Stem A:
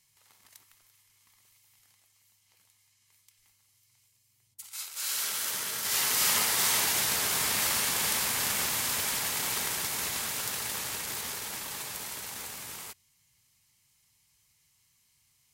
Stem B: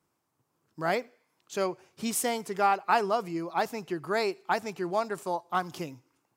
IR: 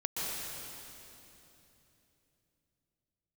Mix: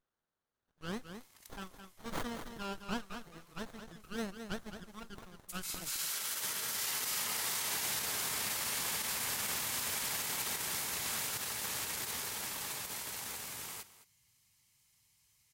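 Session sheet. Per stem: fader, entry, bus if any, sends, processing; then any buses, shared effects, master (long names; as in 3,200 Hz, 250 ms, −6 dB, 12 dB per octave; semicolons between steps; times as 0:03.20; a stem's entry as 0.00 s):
−2.5 dB, 0.90 s, no send, echo send −16 dB, no processing
−2.5 dB, 0.00 s, no send, echo send −8.5 dB, Butterworth high-pass 1,400 Hz 48 dB per octave; windowed peak hold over 17 samples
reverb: not used
echo: single-tap delay 214 ms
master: brickwall limiter −26 dBFS, peak gain reduction 12 dB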